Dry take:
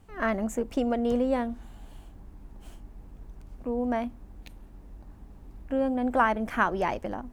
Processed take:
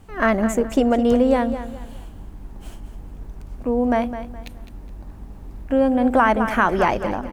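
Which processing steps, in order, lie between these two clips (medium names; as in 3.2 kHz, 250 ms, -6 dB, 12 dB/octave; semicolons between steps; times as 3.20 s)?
on a send: feedback delay 209 ms, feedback 30%, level -11.5 dB; on the sum: loudness maximiser +13.5 dB; trim -4.5 dB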